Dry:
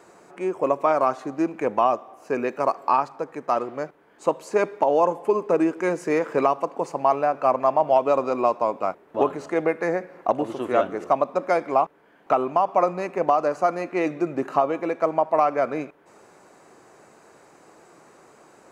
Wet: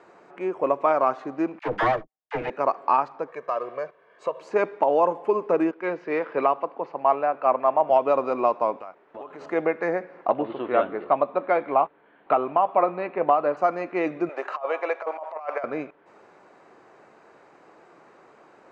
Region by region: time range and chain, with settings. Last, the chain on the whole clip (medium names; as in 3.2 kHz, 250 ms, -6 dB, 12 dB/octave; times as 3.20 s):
1.59–2.50 s: comb filter that takes the minimum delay 6.4 ms + gate -39 dBFS, range -51 dB + phase dispersion lows, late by 50 ms, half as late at 580 Hz
3.28–4.41 s: bass shelf 180 Hz -9 dB + comb 1.8 ms, depth 72% + compression 2:1, threshold -25 dBFS
5.71–7.90 s: low-pass 4.5 kHz 24 dB/octave + bass shelf 160 Hz -7.5 dB + three bands expanded up and down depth 40%
8.79–9.41 s: bass shelf 420 Hz -7.5 dB + compression, threshold -34 dBFS
10.29–13.57 s: steep low-pass 4.4 kHz 96 dB/octave + doubling 14 ms -14 dB
14.29–15.64 s: high-pass 530 Hz 24 dB/octave + compressor with a negative ratio -26 dBFS, ratio -0.5
whole clip: low-pass 3.2 kHz 12 dB/octave; bass shelf 200 Hz -7.5 dB